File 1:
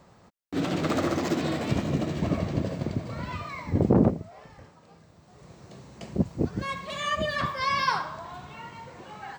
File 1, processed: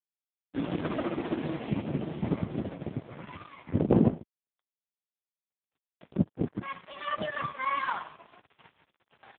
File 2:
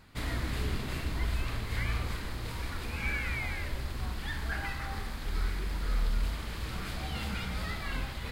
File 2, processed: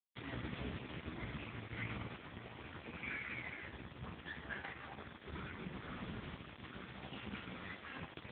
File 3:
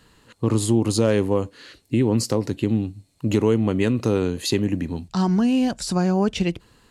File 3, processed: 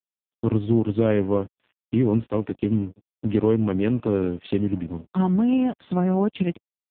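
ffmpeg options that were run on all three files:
-af "aeval=exprs='sgn(val(0))*max(abs(val(0))-0.0126,0)':c=same" -ar 8000 -c:a libopencore_amrnb -b:a 4750

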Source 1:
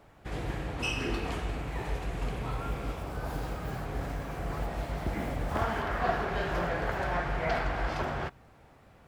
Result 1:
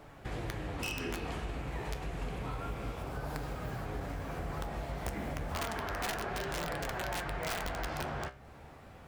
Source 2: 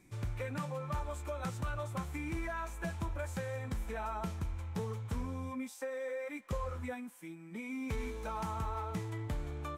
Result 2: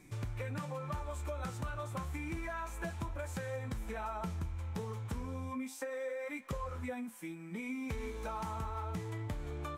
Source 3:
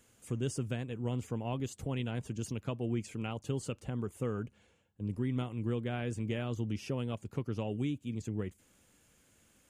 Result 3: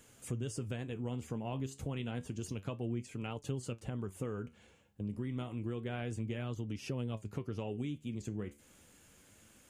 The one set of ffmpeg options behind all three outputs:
-af "aeval=exprs='(mod(12.6*val(0)+1,2)-1)/12.6':c=same,flanger=delay=6.5:depth=8.6:regen=68:speed=0.3:shape=triangular,acompressor=threshold=-48dB:ratio=2.5,volume=9dB"

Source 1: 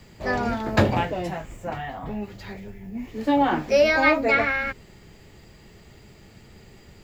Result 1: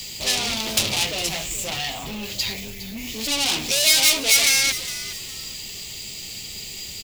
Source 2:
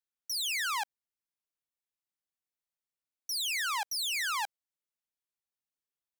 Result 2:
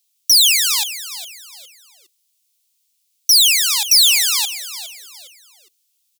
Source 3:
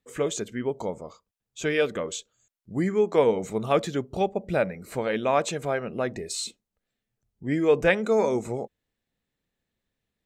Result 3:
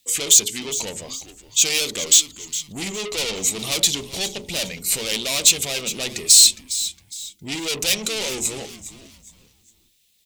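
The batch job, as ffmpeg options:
-filter_complex "[0:a]bandreject=f=60:t=h:w=6,bandreject=f=120:t=h:w=6,bandreject=f=180:t=h:w=6,bandreject=f=240:t=h:w=6,bandreject=f=300:t=h:w=6,bandreject=f=360:t=h:w=6,bandreject=f=420:t=h:w=6,aeval=exprs='0.501*(cos(1*acos(clip(val(0)/0.501,-1,1)))-cos(1*PI/2))+0.224*(cos(5*acos(clip(val(0)/0.501,-1,1)))-cos(5*PI/2))+0.0562*(cos(7*acos(clip(val(0)/0.501,-1,1)))-cos(7*PI/2))+0.0794*(cos(8*acos(clip(val(0)/0.501,-1,1)))-cos(8*PI/2))':c=same,asoftclip=type=tanh:threshold=-24dB,asplit=4[a][b][c][d];[b]adelay=410,afreqshift=-150,volume=-13.5dB[e];[c]adelay=820,afreqshift=-300,volume=-22.9dB[f];[d]adelay=1230,afreqshift=-450,volume=-32.2dB[g];[a][e][f][g]amix=inputs=4:normalize=0,aexciter=amount=12.8:drive=3.5:freq=2.4k,volume=-5dB"

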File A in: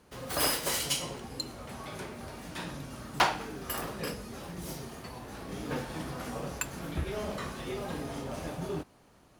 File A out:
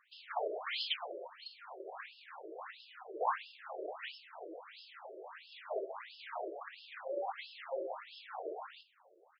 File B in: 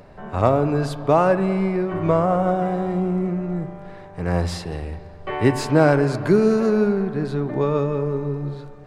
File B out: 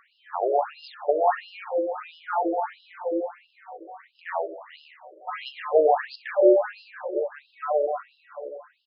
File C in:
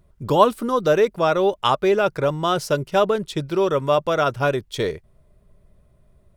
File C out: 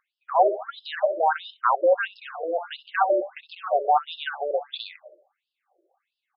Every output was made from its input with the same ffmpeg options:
-filter_complex "[0:a]asplit=2[a][b];[b]adelay=64,lowpass=f=2k:p=1,volume=-10dB,asplit=2[c][d];[d]adelay=64,lowpass=f=2k:p=1,volume=0.46,asplit=2[e][f];[f]adelay=64,lowpass=f=2k:p=1,volume=0.46,asplit=2[g][h];[h]adelay=64,lowpass=f=2k:p=1,volume=0.46,asplit=2[i][j];[j]adelay=64,lowpass=f=2k:p=1,volume=0.46[k];[a][c][e][g][i][k]amix=inputs=6:normalize=0,afreqshift=150,afftfilt=real='re*between(b*sr/1024,450*pow(3800/450,0.5+0.5*sin(2*PI*1.5*pts/sr))/1.41,450*pow(3800/450,0.5+0.5*sin(2*PI*1.5*pts/sr))*1.41)':imag='im*between(b*sr/1024,450*pow(3800/450,0.5+0.5*sin(2*PI*1.5*pts/sr))/1.41,450*pow(3800/450,0.5+0.5*sin(2*PI*1.5*pts/sr))*1.41)':win_size=1024:overlap=0.75"

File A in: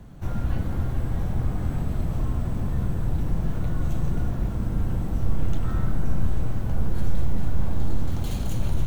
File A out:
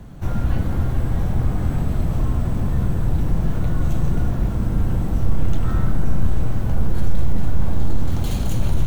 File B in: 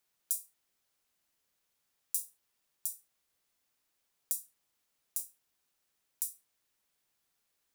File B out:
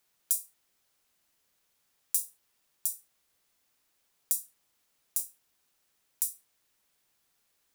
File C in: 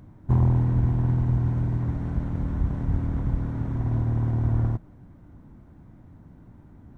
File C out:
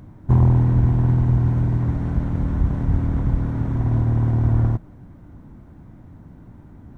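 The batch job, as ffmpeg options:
-af "acontrast=39"

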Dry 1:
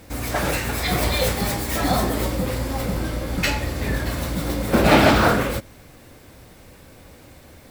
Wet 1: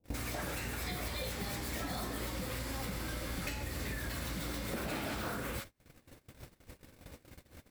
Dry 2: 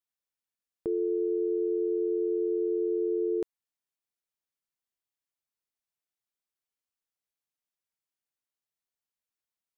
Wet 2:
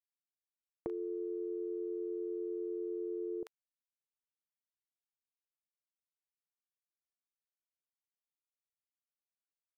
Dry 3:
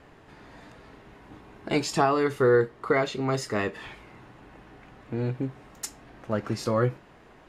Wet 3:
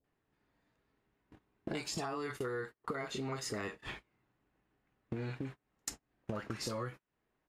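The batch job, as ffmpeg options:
-filter_complex "[0:a]acrossover=split=730[a][b];[b]adelay=40[c];[a][c]amix=inputs=2:normalize=0,acrossover=split=930|6900[d][e][f];[d]acompressor=threshold=-36dB:ratio=4[g];[e]acompressor=threshold=-40dB:ratio=4[h];[f]acompressor=threshold=-44dB:ratio=4[i];[g][h][i]amix=inputs=3:normalize=0,agate=range=-38dB:threshold=-42dB:ratio=16:detection=peak,acompressor=threshold=-51dB:ratio=3,volume=10dB"

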